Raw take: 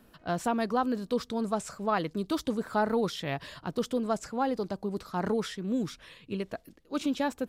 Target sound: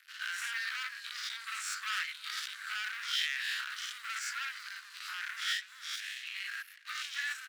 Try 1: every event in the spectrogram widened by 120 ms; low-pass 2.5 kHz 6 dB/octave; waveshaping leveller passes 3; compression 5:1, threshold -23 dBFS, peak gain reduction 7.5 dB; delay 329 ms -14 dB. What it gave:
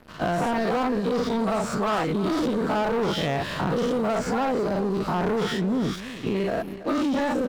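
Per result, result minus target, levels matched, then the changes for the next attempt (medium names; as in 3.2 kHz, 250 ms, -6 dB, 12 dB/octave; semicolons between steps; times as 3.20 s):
2 kHz band -10.0 dB; echo-to-direct +10.5 dB
add after compression: steep high-pass 1.5 kHz 48 dB/octave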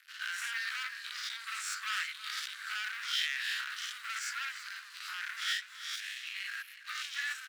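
echo-to-direct +10.5 dB
change: delay 329 ms -24.5 dB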